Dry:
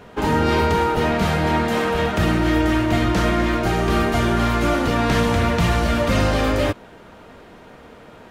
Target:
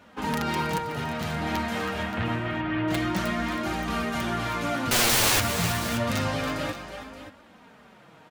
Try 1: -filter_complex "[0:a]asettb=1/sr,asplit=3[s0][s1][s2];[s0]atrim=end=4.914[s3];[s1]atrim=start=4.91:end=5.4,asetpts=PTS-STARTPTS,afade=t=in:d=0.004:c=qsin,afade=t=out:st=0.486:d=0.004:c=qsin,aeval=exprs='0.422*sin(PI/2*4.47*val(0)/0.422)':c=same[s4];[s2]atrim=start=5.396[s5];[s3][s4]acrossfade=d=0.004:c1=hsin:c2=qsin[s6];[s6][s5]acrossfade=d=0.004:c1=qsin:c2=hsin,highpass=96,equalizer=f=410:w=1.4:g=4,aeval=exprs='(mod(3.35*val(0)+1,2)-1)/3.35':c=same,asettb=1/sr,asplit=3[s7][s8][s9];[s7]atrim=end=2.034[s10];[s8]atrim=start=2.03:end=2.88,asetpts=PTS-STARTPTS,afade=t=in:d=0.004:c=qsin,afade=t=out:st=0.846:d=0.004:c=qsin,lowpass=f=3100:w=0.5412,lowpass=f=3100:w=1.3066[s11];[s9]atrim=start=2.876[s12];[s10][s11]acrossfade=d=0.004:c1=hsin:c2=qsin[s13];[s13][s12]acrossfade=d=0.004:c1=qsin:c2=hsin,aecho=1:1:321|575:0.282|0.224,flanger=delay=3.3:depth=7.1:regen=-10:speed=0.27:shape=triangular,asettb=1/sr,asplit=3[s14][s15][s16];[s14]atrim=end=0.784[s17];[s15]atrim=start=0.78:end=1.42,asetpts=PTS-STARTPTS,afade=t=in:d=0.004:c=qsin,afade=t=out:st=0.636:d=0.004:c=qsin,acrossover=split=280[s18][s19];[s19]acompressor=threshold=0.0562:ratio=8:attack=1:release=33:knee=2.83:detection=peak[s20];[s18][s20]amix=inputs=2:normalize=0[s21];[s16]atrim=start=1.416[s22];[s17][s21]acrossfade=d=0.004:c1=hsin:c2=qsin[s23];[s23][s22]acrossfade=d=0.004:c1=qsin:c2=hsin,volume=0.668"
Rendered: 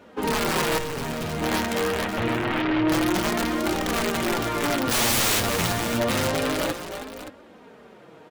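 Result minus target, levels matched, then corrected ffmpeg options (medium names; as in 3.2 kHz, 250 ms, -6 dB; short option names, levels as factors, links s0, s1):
500 Hz band +3.5 dB
-filter_complex "[0:a]asettb=1/sr,asplit=3[s0][s1][s2];[s0]atrim=end=4.914[s3];[s1]atrim=start=4.91:end=5.4,asetpts=PTS-STARTPTS,afade=t=in:d=0.004:c=qsin,afade=t=out:st=0.486:d=0.004:c=qsin,aeval=exprs='0.422*sin(PI/2*4.47*val(0)/0.422)':c=same[s4];[s2]atrim=start=5.396[s5];[s3][s4]acrossfade=d=0.004:c1=hsin:c2=qsin[s6];[s6][s5]acrossfade=d=0.004:c1=qsin:c2=hsin,highpass=96,equalizer=f=410:w=1.4:g=-7.5,aeval=exprs='(mod(3.35*val(0)+1,2)-1)/3.35':c=same,asettb=1/sr,asplit=3[s7][s8][s9];[s7]atrim=end=2.034[s10];[s8]atrim=start=2.03:end=2.88,asetpts=PTS-STARTPTS,afade=t=in:d=0.004:c=qsin,afade=t=out:st=0.846:d=0.004:c=qsin,lowpass=f=3100:w=0.5412,lowpass=f=3100:w=1.3066[s11];[s9]atrim=start=2.876[s12];[s10][s11]acrossfade=d=0.004:c1=hsin:c2=qsin[s13];[s13][s12]acrossfade=d=0.004:c1=qsin:c2=hsin,aecho=1:1:321|575:0.282|0.224,flanger=delay=3.3:depth=7.1:regen=-10:speed=0.27:shape=triangular,asettb=1/sr,asplit=3[s14][s15][s16];[s14]atrim=end=0.784[s17];[s15]atrim=start=0.78:end=1.42,asetpts=PTS-STARTPTS,afade=t=in:d=0.004:c=qsin,afade=t=out:st=0.636:d=0.004:c=qsin,acrossover=split=280[s18][s19];[s19]acompressor=threshold=0.0562:ratio=8:attack=1:release=33:knee=2.83:detection=peak[s20];[s18][s20]amix=inputs=2:normalize=0[s21];[s16]atrim=start=1.416[s22];[s17][s21]acrossfade=d=0.004:c1=hsin:c2=qsin[s23];[s23][s22]acrossfade=d=0.004:c1=qsin:c2=hsin,volume=0.668"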